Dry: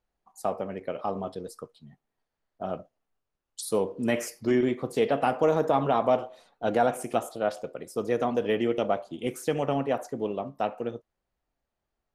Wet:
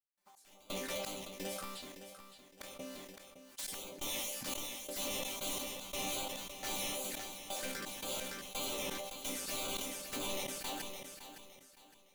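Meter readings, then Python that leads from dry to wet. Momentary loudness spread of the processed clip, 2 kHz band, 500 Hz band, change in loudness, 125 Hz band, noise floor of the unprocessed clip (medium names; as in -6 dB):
14 LU, -6.5 dB, -18.5 dB, -11.0 dB, -17.5 dB, -85 dBFS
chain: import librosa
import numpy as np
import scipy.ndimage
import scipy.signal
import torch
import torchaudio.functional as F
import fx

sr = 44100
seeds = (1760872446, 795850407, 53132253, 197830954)

p1 = fx.spec_flatten(x, sr, power=0.45)
p2 = fx.highpass(p1, sr, hz=120.0, slope=6)
p3 = fx.dynamic_eq(p2, sr, hz=580.0, q=5.5, threshold_db=-44.0, ratio=4.0, max_db=6)
p4 = fx.over_compress(p3, sr, threshold_db=-30.0, ratio=-1.0)
p5 = p3 + F.gain(torch.from_numpy(p4), 1.0).numpy()
p6 = (np.mod(10.0 ** (20.5 / 20.0) * p5 + 1.0, 2.0) - 1.0) / 10.0 ** (20.5 / 20.0)
p7 = fx.env_flanger(p6, sr, rest_ms=6.1, full_db=-24.5)
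p8 = fx.wow_flutter(p7, sr, seeds[0], rate_hz=2.1, depth_cents=120.0)
p9 = fx.resonator_bank(p8, sr, root=55, chord='sus4', decay_s=0.24)
p10 = fx.step_gate(p9, sr, bpm=86, pattern='.x..xx..xxx..xx', floor_db=-24.0, edge_ms=4.5)
p11 = 10.0 ** (-36.5 / 20.0) * np.tanh(p10 / 10.0 ** (-36.5 / 20.0))
p12 = p11 + fx.echo_feedback(p11, sr, ms=563, feedback_pct=33, wet_db=-11.0, dry=0)
p13 = fx.sustainer(p12, sr, db_per_s=28.0)
y = F.gain(torch.from_numpy(p13), 6.5).numpy()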